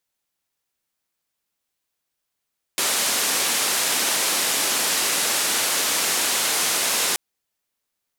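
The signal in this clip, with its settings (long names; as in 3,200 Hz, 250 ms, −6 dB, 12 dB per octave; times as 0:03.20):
band-limited noise 250–11,000 Hz, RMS −22 dBFS 4.38 s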